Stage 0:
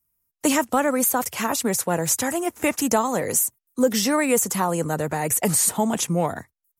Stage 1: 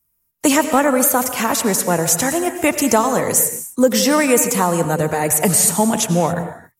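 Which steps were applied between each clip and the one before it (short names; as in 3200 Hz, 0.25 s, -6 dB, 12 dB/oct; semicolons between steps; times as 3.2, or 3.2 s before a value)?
reverb, pre-delay 78 ms, DRR 8.5 dB; gain +5.5 dB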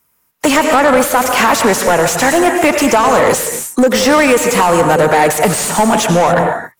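compressor, threshold -16 dBFS, peak gain reduction 8 dB; overdrive pedal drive 24 dB, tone 2100 Hz, clips at -4 dBFS; gain +3.5 dB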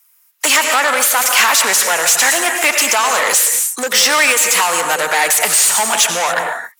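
HPF 930 Hz 6 dB/oct; tilt shelf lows -7 dB, about 1200 Hz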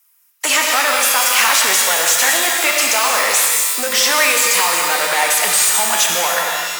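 shimmer reverb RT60 1.5 s, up +12 st, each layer -2 dB, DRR 3 dB; gain -4 dB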